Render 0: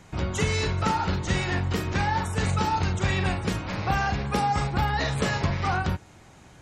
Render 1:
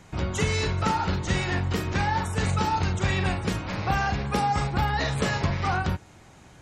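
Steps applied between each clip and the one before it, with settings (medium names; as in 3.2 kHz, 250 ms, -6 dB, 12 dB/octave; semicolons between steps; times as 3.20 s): no audible change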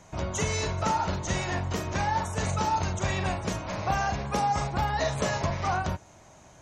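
graphic EQ with 31 bands 630 Hz +11 dB, 1 kHz +6 dB, 6.3 kHz +10 dB; trim -4.5 dB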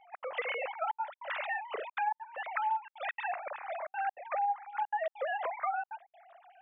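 formants replaced by sine waves; compression 8:1, threshold -33 dBFS, peak gain reduction 19.5 dB; trance gate "xx.xxxxxxxxx." 198 bpm -60 dB; trim +3 dB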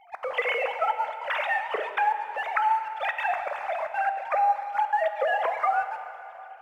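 in parallel at -6 dB: crossover distortion -53 dBFS; on the sum: plate-style reverb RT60 2.9 s, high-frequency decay 0.85×, DRR 7.5 dB; trim +5 dB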